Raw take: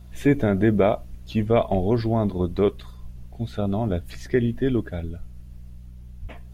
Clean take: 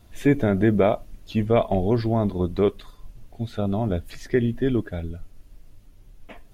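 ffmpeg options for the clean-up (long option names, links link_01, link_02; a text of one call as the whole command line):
ffmpeg -i in.wav -filter_complex "[0:a]bandreject=frequency=61.1:width_type=h:width=4,bandreject=frequency=122.2:width_type=h:width=4,bandreject=frequency=183.3:width_type=h:width=4,asplit=3[link_01][link_02][link_03];[link_01]afade=type=out:start_time=6.21:duration=0.02[link_04];[link_02]highpass=frequency=140:width=0.5412,highpass=frequency=140:width=1.3066,afade=type=in:start_time=6.21:duration=0.02,afade=type=out:start_time=6.33:duration=0.02[link_05];[link_03]afade=type=in:start_time=6.33:duration=0.02[link_06];[link_04][link_05][link_06]amix=inputs=3:normalize=0" out.wav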